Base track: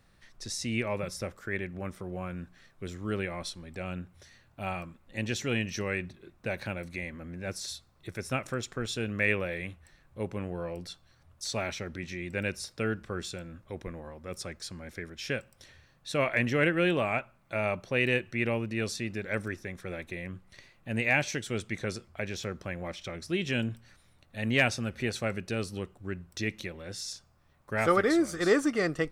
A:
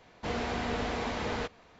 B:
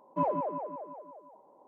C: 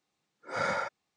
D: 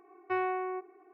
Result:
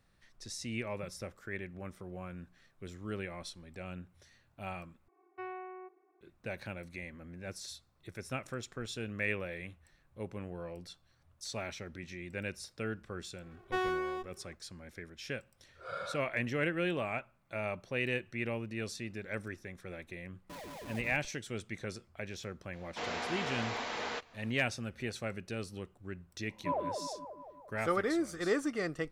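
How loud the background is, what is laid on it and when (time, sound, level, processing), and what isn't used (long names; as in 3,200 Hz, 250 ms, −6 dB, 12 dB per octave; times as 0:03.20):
base track −7 dB
0:05.08: overwrite with D −12 dB
0:13.42: mix in D −1.5 dB + lower of the sound and its delayed copy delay 2.1 ms
0:15.32: mix in C −8.5 dB + phaser with its sweep stopped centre 1,300 Hz, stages 8
0:20.33: mix in B −10.5 dB + comparator with hysteresis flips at −37.5 dBFS
0:22.73: mix in A −0.5 dB + high-pass filter 790 Hz 6 dB per octave
0:26.49: mix in B −5 dB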